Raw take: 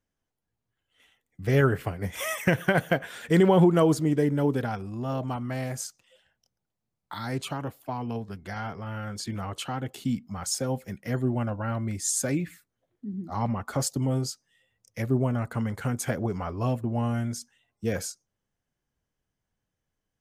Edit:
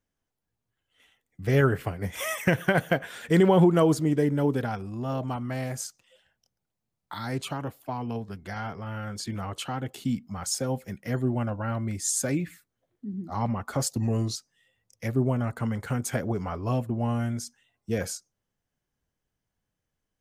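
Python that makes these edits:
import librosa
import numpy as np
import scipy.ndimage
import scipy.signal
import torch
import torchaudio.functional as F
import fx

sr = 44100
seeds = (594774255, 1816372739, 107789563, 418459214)

y = fx.edit(x, sr, fx.speed_span(start_s=13.96, length_s=0.34, speed=0.86), tone=tone)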